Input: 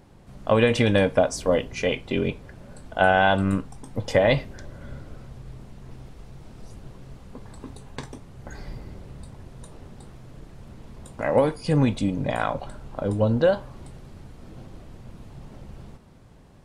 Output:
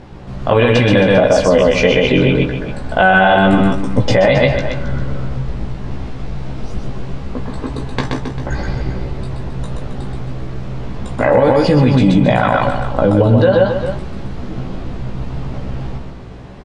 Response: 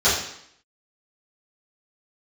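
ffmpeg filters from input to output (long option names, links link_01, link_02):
-filter_complex "[0:a]lowpass=4600,asplit=2[link_01][link_02];[link_02]aecho=0:1:127:0.631[link_03];[link_01][link_03]amix=inputs=2:normalize=0,acompressor=threshold=-21dB:ratio=6,asplit=2[link_04][link_05];[link_05]adelay=16,volume=-3.5dB[link_06];[link_04][link_06]amix=inputs=2:normalize=0,asplit=2[link_07][link_08];[link_08]aecho=0:1:269:0.266[link_09];[link_07][link_09]amix=inputs=2:normalize=0,alimiter=level_in=15.5dB:limit=-1dB:release=50:level=0:latency=1,volume=-1dB"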